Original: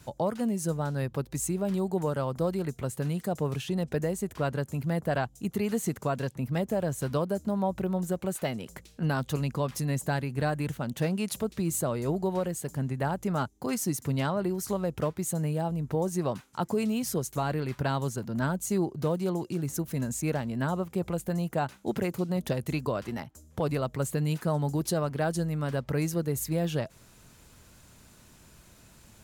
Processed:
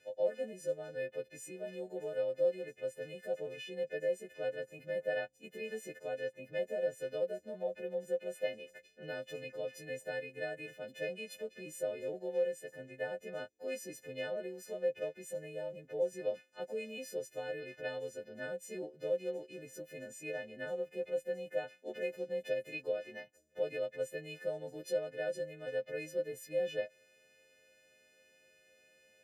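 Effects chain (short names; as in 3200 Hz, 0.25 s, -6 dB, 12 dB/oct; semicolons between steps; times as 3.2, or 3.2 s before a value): frequency quantiser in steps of 3 st; vowel filter e; gain +1 dB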